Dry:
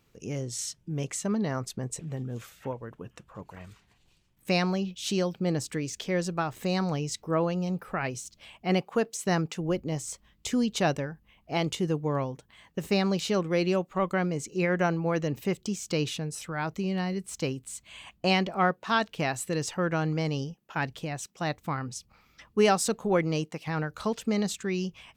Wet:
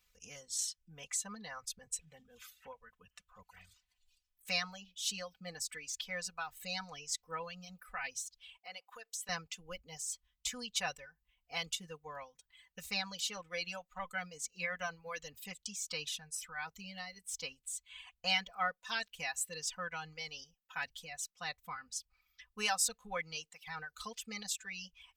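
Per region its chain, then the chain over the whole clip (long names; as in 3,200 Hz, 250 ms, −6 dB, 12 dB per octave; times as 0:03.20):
0:08.57–0:09.29: high-pass filter 390 Hz + downward compressor 2.5 to 1, threshold −37 dBFS
whole clip: reverb reduction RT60 2 s; guitar amp tone stack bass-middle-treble 10-0-10; comb filter 4 ms, depth 99%; level −3.5 dB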